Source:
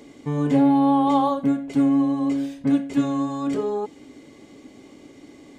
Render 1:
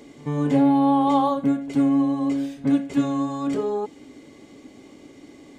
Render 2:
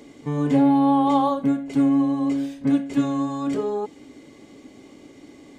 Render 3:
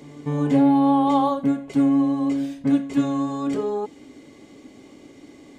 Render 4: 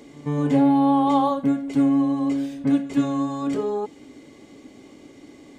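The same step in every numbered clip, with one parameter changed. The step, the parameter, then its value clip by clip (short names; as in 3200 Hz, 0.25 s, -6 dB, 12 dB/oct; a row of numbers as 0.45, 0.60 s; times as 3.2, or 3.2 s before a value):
pre-echo, time: 85, 37, 245, 131 ms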